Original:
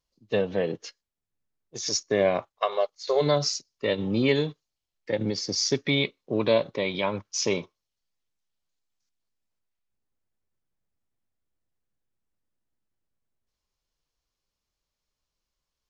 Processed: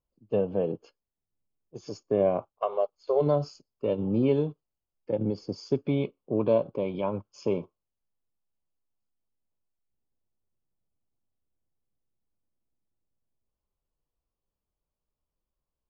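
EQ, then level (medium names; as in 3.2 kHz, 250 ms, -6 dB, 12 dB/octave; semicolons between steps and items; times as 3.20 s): boxcar filter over 23 samples; 0.0 dB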